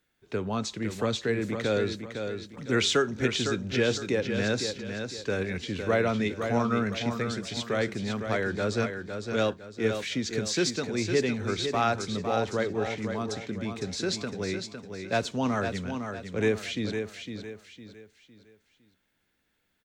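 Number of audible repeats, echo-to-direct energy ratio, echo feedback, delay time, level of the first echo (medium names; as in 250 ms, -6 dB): 4, -6.5 dB, 36%, 507 ms, -7.0 dB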